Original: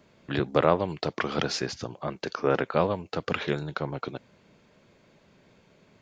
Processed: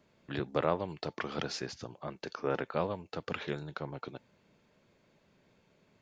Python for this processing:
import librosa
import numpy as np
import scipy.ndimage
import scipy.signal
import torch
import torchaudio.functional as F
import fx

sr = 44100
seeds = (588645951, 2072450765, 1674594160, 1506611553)

y = fx.comb_fb(x, sr, f0_hz=880.0, decay_s=0.16, harmonics='all', damping=0.0, mix_pct=40)
y = F.gain(torch.from_numpy(y), -4.0).numpy()